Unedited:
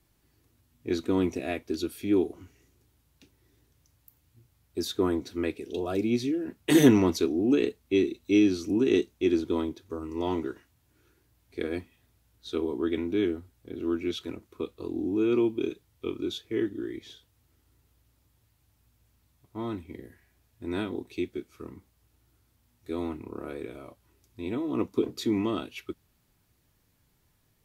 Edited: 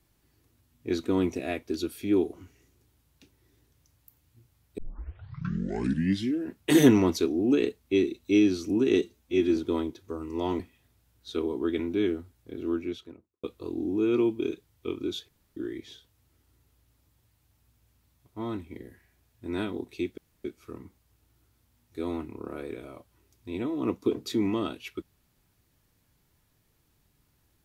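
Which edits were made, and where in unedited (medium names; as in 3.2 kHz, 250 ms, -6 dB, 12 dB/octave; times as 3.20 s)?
4.78 s: tape start 1.66 s
9.01–9.38 s: stretch 1.5×
10.41–11.78 s: delete
13.79–14.62 s: studio fade out
16.47–16.75 s: room tone
21.36 s: insert room tone 0.27 s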